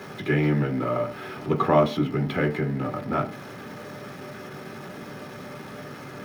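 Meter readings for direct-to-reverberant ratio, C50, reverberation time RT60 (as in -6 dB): 1.5 dB, 14.5 dB, 0.45 s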